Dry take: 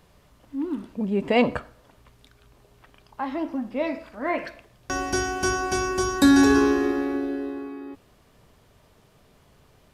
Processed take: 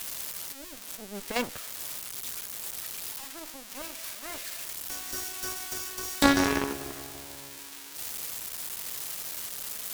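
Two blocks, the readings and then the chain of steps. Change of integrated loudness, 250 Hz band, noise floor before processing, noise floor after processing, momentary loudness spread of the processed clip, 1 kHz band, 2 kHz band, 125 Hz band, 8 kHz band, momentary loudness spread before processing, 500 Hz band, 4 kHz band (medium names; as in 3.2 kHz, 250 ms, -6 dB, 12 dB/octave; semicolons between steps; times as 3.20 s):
-8.5 dB, -11.0 dB, -58 dBFS, -44 dBFS, 13 LU, -6.5 dB, -6.0 dB, -8.0 dB, +2.5 dB, 17 LU, -11.0 dB, -0.5 dB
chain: zero-crossing glitches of -13 dBFS; Chebyshev shaper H 2 -7 dB, 3 -10 dB, 4 -20 dB, 8 -29 dB, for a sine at -6.5 dBFS; trim -1.5 dB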